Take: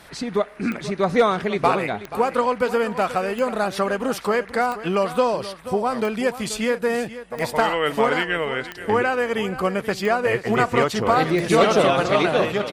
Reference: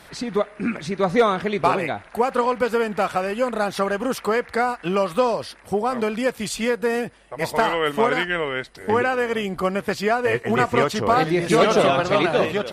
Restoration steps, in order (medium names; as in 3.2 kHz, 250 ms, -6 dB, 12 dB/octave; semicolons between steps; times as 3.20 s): de-click; inverse comb 482 ms -14 dB